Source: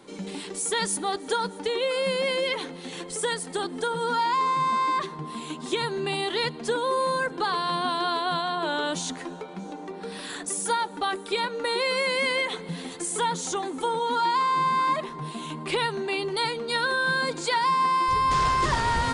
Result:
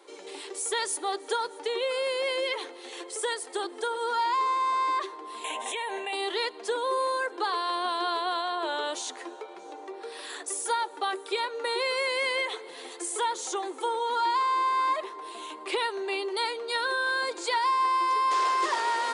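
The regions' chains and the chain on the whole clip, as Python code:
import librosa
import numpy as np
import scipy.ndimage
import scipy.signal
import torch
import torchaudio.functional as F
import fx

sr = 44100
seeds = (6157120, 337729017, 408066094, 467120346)

y = fx.chain(x, sr, fx.fixed_phaser(hz=1300.0, stages=6),
    fx.env_flatten(amount_pct=100), at=(5.44, 6.13))
y = scipy.signal.sosfilt(scipy.signal.ellip(4, 1.0, 70, 350.0, 'highpass', fs=sr, output='sos'), y)
y = fx.notch(y, sr, hz=1500.0, q=27.0)
y = y * 10.0 ** (-2.0 / 20.0)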